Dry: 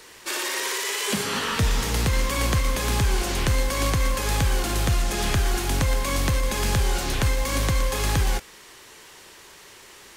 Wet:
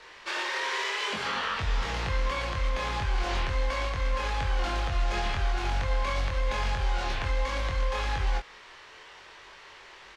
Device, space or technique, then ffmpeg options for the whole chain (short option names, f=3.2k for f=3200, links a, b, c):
DJ mixer with the lows and highs turned down: -filter_complex "[0:a]aemphasis=mode=reproduction:type=bsi,acrossover=split=530 5800:gain=0.126 1 0.158[a][b][c];[a][b][c]amix=inputs=3:normalize=0,alimiter=limit=-22.5dB:level=0:latency=1:release=130,asplit=2[d][e];[e]adelay=23,volume=-3dB[f];[d][f]amix=inputs=2:normalize=0"